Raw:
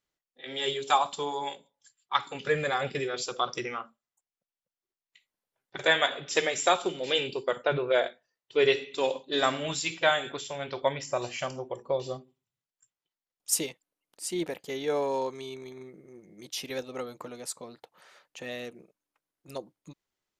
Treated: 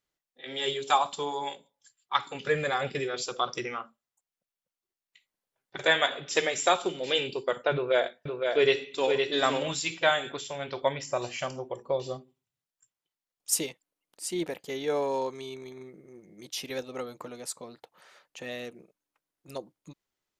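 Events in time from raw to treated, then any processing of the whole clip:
0:07.74–0:09.75: single-tap delay 513 ms −4.5 dB

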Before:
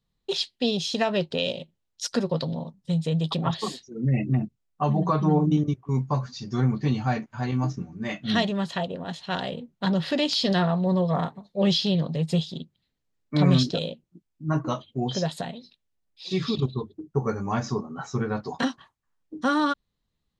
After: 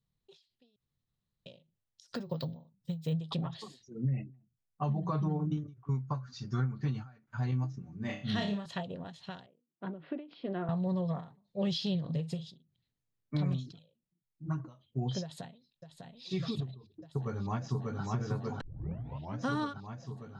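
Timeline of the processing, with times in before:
0:00.76–0:01.46: fill with room tone
0:02.15–0:03.13: bad sample-rate conversion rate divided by 2×, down filtered, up hold
0:05.39–0:07.37: parametric band 1,400 Hz +11.5 dB 0.53 octaves
0:07.98–0:08.66: flutter between parallel walls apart 5 metres, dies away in 0.33 s
0:09.46–0:10.69: loudspeaker in its box 310–2,000 Hz, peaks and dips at 320 Hz +8 dB, 540 Hz −4 dB, 870 Hz −8 dB, 1,200 Hz −4 dB, 1,800 Hz −10 dB
0:12.00–0:12.57: double-tracking delay 43 ms −10 dB
0:13.52–0:14.58: flanger swept by the level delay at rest 7.1 ms, full sweep at −17 dBFS
0:15.22–0:16.26: delay throw 600 ms, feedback 80%, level −9.5 dB
0:16.87–0:18.03: delay throw 590 ms, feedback 70%, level −2 dB
0:18.61: tape start 0.79 s
whole clip: parametric band 120 Hz +10 dB 0.86 octaves; downward compressor, threshold −19 dBFS; every ending faded ahead of time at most 130 dB per second; level −9 dB

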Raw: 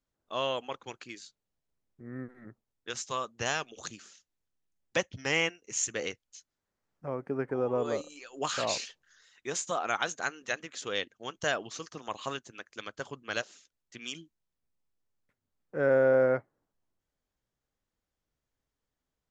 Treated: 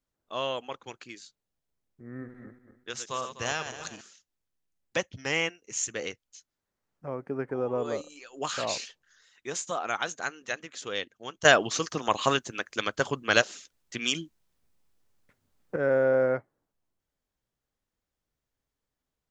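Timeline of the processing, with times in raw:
0:02.09–0:04.01: feedback delay that plays each chunk backwards 125 ms, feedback 55%, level −8.5 dB
0:11.45–0:15.76: clip gain +11.5 dB

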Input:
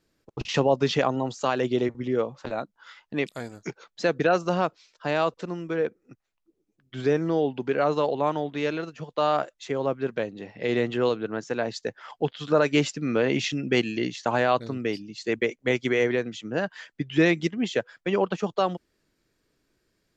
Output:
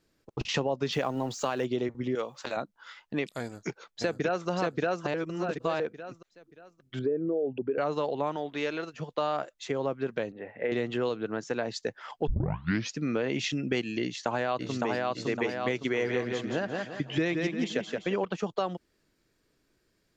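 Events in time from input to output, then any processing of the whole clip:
0:00.92–0:01.65: mu-law and A-law mismatch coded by mu
0:02.15–0:02.57: spectral tilt +3.5 dB per octave
0:03.43–0:04.48: delay throw 580 ms, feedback 30%, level 0 dB
0:05.14–0:05.80: reverse
0:06.99–0:07.78: spectral envelope exaggerated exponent 2
0:08.36–0:08.94: parametric band 120 Hz −8 dB 2.6 octaves
0:10.32–0:10.72: loudspeaker in its box 110–2,300 Hz, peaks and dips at 130 Hz −10 dB, 190 Hz −8 dB, 320 Hz −7 dB, 550 Hz +5 dB, 1,100 Hz −4 dB, 1,700 Hz +4 dB
0:12.27: tape start 0.68 s
0:14.03–0:15.15: delay throw 560 ms, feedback 45%, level −2 dB
0:15.90–0:18.25: repeating echo 172 ms, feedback 32%, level −6 dB
whole clip: downward compressor 3 to 1, threshold −27 dBFS

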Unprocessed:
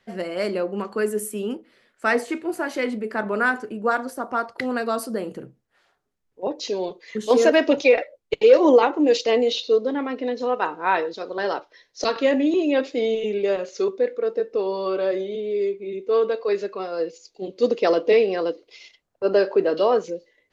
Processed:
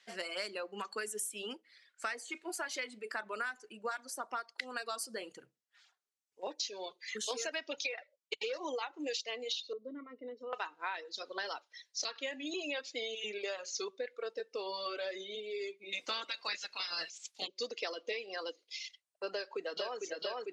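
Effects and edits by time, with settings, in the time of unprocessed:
0:09.73–0:10.53: moving average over 53 samples
0:15.92–0:17.46: ceiling on every frequency bin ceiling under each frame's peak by 29 dB
0:19.31–0:20.00: delay throw 450 ms, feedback 70%, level −3 dB
whole clip: meter weighting curve ITU-R 468; reverb reduction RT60 1.1 s; downward compressor 12 to 1, threshold −29 dBFS; level −6 dB

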